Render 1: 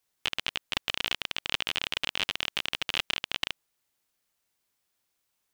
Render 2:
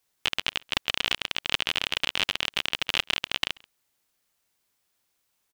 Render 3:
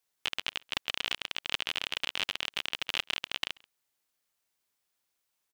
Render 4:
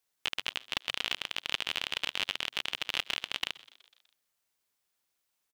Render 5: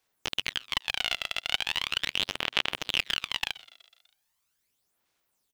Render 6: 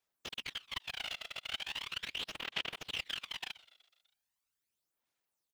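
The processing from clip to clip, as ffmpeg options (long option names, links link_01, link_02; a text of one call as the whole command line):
ffmpeg -i in.wav -filter_complex "[0:a]asplit=2[link_01][link_02];[link_02]adelay=134.1,volume=-26dB,highshelf=frequency=4000:gain=-3.02[link_03];[link_01][link_03]amix=inputs=2:normalize=0,volume=3.5dB" out.wav
ffmpeg -i in.wav -af "lowshelf=frequency=250:gain=-5,volume=-6dB" out.wav
ffmpeg -i in.wav -filter_complex "[0:a]asplit=6[link_01][link_02][link_03][link_04][link_05][link_06];[link_02]adelay=124,afreqshift=120,volume=-21.5dB[link_07];[link_03]adelay=248,afreqshift=240,volume=-25.5dB[link_08];[link_04]adelay=372,afreqshift=360,volume=-29.5dB[link_09];[link_05]adelay=496,afreqshift=480,volume=-33.5dB[link_10];[link_06]adelay=620,afreqshift=600,volume=-37.6dB[link_11];[link_01][link_07][link_08][link_09][link_10][link_11]amix=inputs=6:normalize=0" out.wav
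ffmpeg -i in.wav -af "aphaser=in_gain=1:out_gain=1:delay=1.5:decay=0.58:speed=0.39:type=sinusoidal,volume=2dB" out.wav
ffmpeg -i in.wav -af "afftfilt=real='hypot(re,im)*cos(2*PI*random(0))':imag='hypot(re,im)*sin(2*PI*random(1))':win_size=512:overlap=0.75,volume=-4.5dB" out.wav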